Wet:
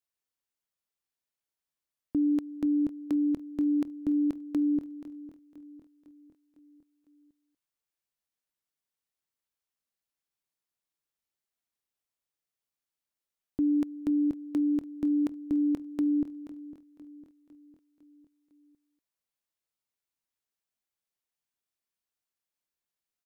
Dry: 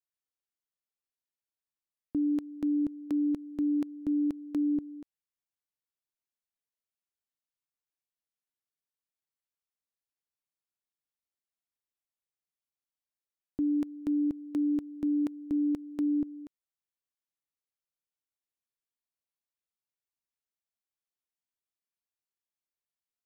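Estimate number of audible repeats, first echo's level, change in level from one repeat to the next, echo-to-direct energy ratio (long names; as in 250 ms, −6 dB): 4, −16.0 dB, −5.5 dB, −14.5 dB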